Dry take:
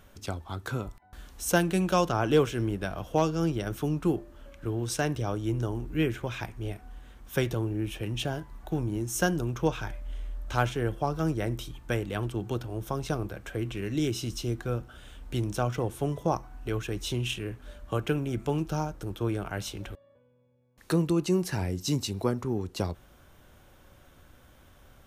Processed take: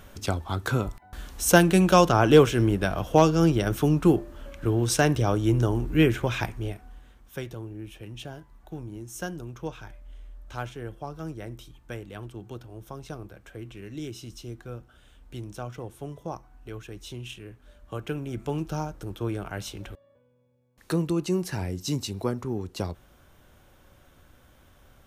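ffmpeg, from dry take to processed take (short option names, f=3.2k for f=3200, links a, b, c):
-af "volume=14.5dB,afade=t=out:st=6.44:d=0.3:silence=0.473151,afade=t=out:st=6.74:d=0.61:silence=0.375837,afade=t=in:st=17.71:d=0.93:silence=0.421697"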